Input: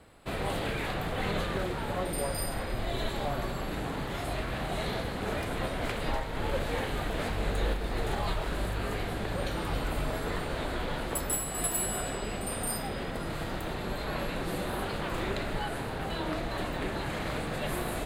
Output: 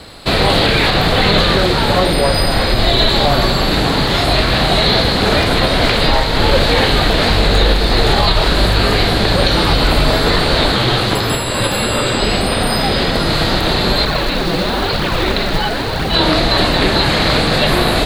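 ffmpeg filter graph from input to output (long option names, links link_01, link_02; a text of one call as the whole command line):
ffmpeg -i in.wav -filter_complex "[0:a]asettb=1/sr,asplit=3[link_01][link_02][link_03];[link_01]atrim=end=10.724[link_04];[link_02]atrim=start=10.72:end=12.19,asetpts=PTS-STARTPTS,afade=type=in:duration=0.004:curve=qsin,afade=type=out:start_time=1.466:duration=0.004:curve=qsin,equalizer=frequency=74:width_type=o:width=1.3:gain=-13.5,afreqshift=-150[link_05];[link_03]atrim=start=12.186[link_06];[link_04][link_05]acrossfade=duration=0.004:curve1=hsin:curve2=qsin[link_07];[link_07][link_06]acrossfade=duration=0.004:curve1=qsin:curve2=hsin,asettb=1/sr,asplit=3[link_08][link_09][link_10];[link_08]atrim=end=14.054[link_11];[link_09]atrim=start=14.05:end=16.14,asetpts=PTS-STARTPTS,afade=type=in:duration=0.004:curve=qsin,afade=type=out:start_time=2.086:duration=0.004:curve=qsin,acrossover=split=4300[link_12][link_13];[link_13]acompressor=threshold=-60dB:ratio=4:attack=1:release=60[link_14];[link_12][link_14]amix=inputs=2:normalize=0,flanger=delay=0.3:depth=6.1:regen=-22:speed=1:shape=triangular,acrusher=bits=5:mode=log:mix=0:aa=0.000001[link_15];[link_10]atrim=start=16.136[link_16];[link_11][link_15]acrossfade=duration=0.004:curve1=hsin:curve2=qsin[link_17];[link_17][link_16]acrossfade=duration=0.004:curve1=qsin:curve2=hsin,acrossover=split=4000[link_18][link_19];[link_19]acompressor=threshold=-50dB:ratio=4:attack=1:release=60[link_20];[link_18][link_20]amix=inputs=2:normalize=0,equalizer=frequency=4300:width_type=o:width=0.69:gain=14.5,alimiter=level_in=20dB:limit=-1dB:release=50:level=0:latency=1,volume=-1dB" out.wav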